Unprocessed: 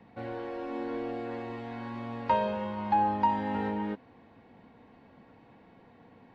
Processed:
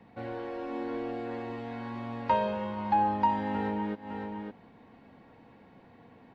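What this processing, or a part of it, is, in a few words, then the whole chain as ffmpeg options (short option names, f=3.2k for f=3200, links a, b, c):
ducked delay: -filter_complex "[0:a]asplit=3[a][b][c];[b]adelay=558,volume=-6dB[d];[c]apad=whole_len=304620[e];[d][e]sidechaincompress=threshold=-50dB:ratio=8:attack=50:release=144[f];[a][f]amix=inputs=2:normalize=0"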